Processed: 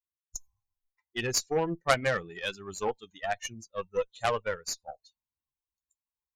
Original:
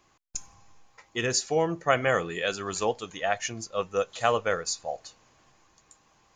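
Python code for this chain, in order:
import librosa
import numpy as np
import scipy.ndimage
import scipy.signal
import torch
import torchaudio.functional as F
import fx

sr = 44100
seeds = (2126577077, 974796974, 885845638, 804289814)

y = fx.bin_expand(x, sr, power=2.0)
y = fx.cheby_harmonics(y, sr, harmonics=(6, 8), levels_db=(-10, -12), full_scale_db=-10.5)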